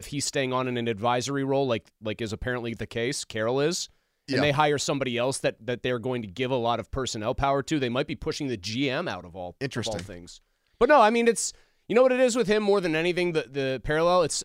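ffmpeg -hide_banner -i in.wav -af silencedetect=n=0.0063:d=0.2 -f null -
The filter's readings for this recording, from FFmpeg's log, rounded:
silence_start: 3.86
silence_end: 4.28 | silence_duration: 0.42
silence_start: 10.37
silence_end: 10.81 | silence_duration: 0.43
silence_start: 11.55
silence_end: 11.90 | silence_duration: 0.35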